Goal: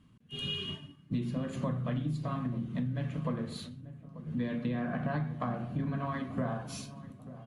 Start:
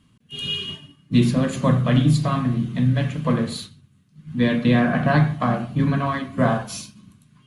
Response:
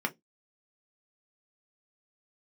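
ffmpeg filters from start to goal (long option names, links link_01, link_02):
-filter_complex "[0:a]highshelf=frequency=2500:gain=-9,acompressor=threshold=-28dB:ratio=6,asplit=2[link_01][link_02];[link_02]adelay=889,lowpass=frequency=840:poles=1,volume=-14.5dB,asplit=2[link_03][link_04];[link_04]adelay=889,lowpass=frequency=840:poles=1,volume=0.52,asplit=2[link_05][link_06];[link_06]adelay=889,lowpass=frequency=840:poles=1,volume=0.52,asplit=2[link_07][link_08];[link_08]adelay=889,lowpass=frequency=840:poles=1,volume=0.52,asplit=2[link_09][link_10];[link_10]adelay=889,lowpass=frequency=840:poles=1,volume=0.52[link_11];[link_01][link_03][link_05][link_07][link_09][link_11]amix=inputs=6:normalize=0,volume=-3dB"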